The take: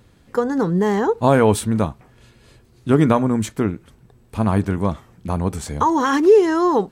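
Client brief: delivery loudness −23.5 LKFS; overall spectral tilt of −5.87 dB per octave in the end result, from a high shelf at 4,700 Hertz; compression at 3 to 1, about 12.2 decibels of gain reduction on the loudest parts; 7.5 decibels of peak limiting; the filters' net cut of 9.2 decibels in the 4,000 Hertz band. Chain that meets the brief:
parametric band 4,000 Hz −8.5 dB
high-shelf EQ 4,700 Hz −8 dB
downward compressor 3 to 1, threshold −25 dBFS
level +6 dB
brickwall limiter −13.5 dBFS

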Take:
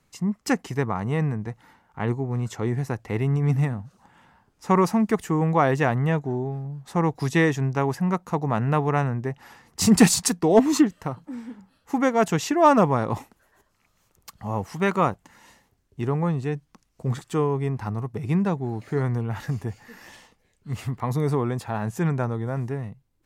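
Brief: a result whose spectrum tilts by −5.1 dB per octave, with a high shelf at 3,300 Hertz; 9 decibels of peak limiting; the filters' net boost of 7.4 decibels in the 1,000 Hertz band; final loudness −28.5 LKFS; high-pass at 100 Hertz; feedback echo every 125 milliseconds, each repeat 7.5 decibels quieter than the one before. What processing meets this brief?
high-pass filter 100 Hz
parametric band 1,000 Hz +8.5 dB
high-shelf EQ 3,300 Hz +5.5 dB
brickwall limiter −7.5 dBFS
repeating echo 125 ms, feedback 42%, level −7.5 dB
level −6 dB

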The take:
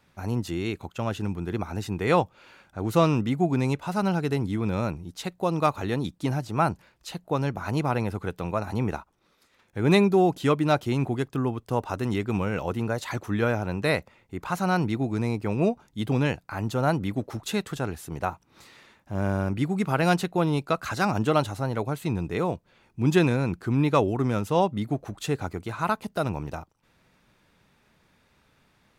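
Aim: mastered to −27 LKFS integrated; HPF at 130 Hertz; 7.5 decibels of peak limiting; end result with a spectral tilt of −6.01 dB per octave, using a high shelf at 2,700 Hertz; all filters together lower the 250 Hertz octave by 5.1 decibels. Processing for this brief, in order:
high-pass filter 130 Hz
parametric band 250 Hz −6.5 dB
high-shelf EQ 2,700 Hz −6.5 dB
level +4.5 dB
brickwall limiter −12 dBFS

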